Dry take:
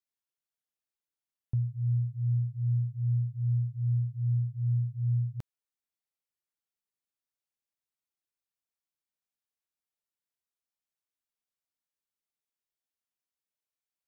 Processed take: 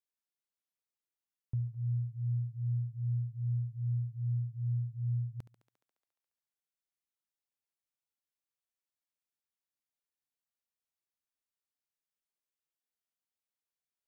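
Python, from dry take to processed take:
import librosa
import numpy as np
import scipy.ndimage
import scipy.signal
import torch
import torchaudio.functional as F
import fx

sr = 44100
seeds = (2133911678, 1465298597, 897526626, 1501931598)

y = fx.echo_thinned(x, sr, ms=70, feedback_pct=77, hz=230.0, wet_db=-12.5)
y = F.gain(torch.from_numpy(y), -5.0).numpy()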